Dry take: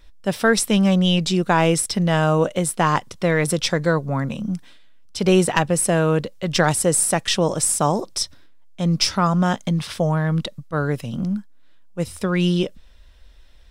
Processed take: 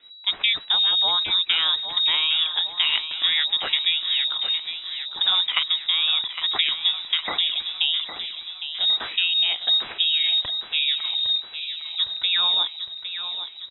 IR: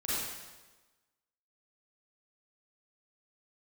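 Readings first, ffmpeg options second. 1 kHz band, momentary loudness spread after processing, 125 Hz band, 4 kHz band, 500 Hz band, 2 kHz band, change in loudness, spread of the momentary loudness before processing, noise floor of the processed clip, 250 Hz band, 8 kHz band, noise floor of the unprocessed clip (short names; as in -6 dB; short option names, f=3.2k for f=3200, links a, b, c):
-11.5 dB, 11 LU, under -35 dB, +11.5 dB, -24.5 dB, -2.5 dB, -0.5 dB, 9 LU, -41 dBFS, under -30 dB, under -40 dB, -46 dBFS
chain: -filter_complex "[0:a]acrossover=split=95|2700[a][b][c];[a]acompressor=threshold=-41dB:ratio=4[d];[b]acompressor=threshold=-18dB:ratio=4[e];[c]acompressor=threshold=-30dB:ratio=4[f];[d][e][f]amix=inputs=3:normalize=0,aecho=1:1:809|1618|2427|3236|4045|4854:0.316|0.177|0.0992|0.0555|0.0311|0.0174,lowpass=f=3.3k:t=q:w=0.5098,lowpass=f=3.3k:t=q:w=0.6013,lowpass=f=3.3k:t=q:w=0.9,lowpass=f=3.3k:t=q:w=2.563,afreqshift=-3900"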